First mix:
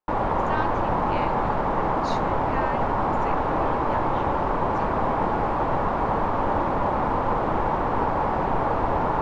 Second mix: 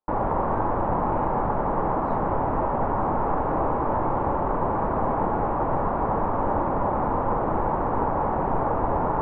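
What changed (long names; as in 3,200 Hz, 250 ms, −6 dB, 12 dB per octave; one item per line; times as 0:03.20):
speech −10.5 dB
master: add low-pass filter 1,300 Hz 12 dB per octave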